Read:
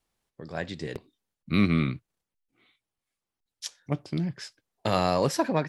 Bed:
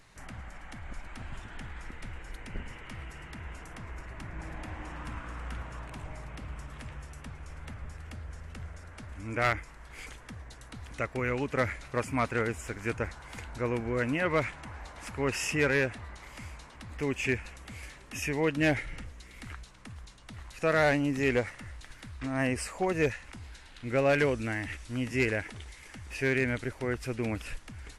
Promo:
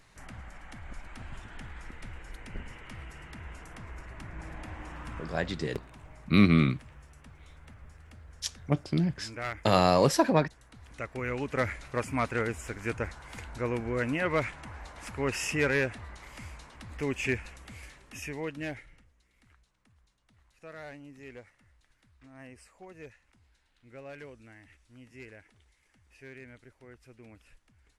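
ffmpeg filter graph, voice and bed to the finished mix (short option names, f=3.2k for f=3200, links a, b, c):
-filter_complex "[0:a]adelay=4800,volume=2dB[a];[1:a]volume=6.5dB,afade=t=out:st=5.2:d=0.38:silence=0.446684,afade=t=in:st=10.73:d=0.88:silence=0.398107,afade=t=out:st=17.37:d=1.66:silence=0.105925[b];[a][b]amix=inputs=2:normalize=0"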